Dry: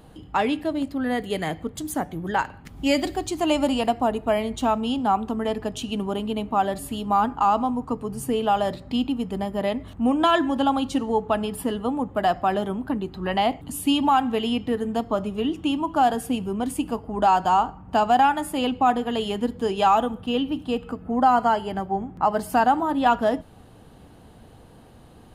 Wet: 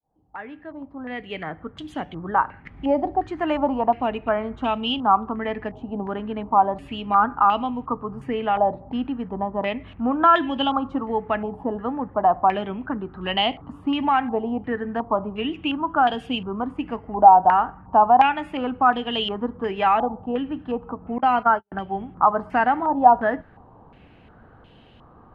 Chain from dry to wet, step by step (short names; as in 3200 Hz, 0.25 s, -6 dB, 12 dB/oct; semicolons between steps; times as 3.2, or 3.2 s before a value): opening faded in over 2.29 s; 21.18–21.72 gate -21 dBFS, range -52 dB; stepped low-pass 2.8 Hz 820–3000 Hz; gain -2.5 dB